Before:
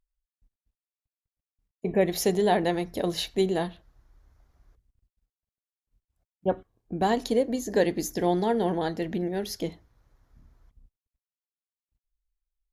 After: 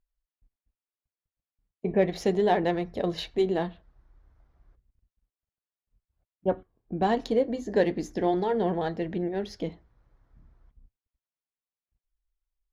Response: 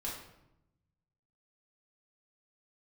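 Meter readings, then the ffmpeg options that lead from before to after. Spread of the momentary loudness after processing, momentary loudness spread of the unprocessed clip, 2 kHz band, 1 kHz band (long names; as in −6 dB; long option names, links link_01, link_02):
11 LU, 10 LU, −1.5 dB, −0.5 dB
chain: -af "adynamicsmooth=sensitivity=1:basefreq=3500,flanger=delay=1.6:depth=4.5:regen=-74:speed=0.34:shape=sinusoidal,volume=4dB"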